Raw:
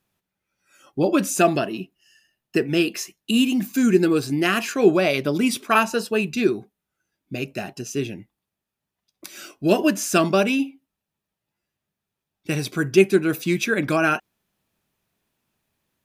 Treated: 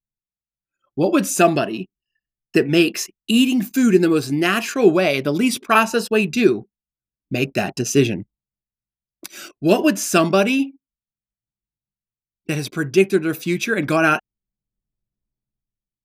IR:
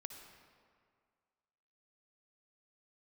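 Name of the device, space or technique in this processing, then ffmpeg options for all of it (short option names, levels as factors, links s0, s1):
voice memo with heavy noise removal: -af "anlmdn=0.158,dynaudnorm=f=200:g=9:m=5.62,volume=0.891"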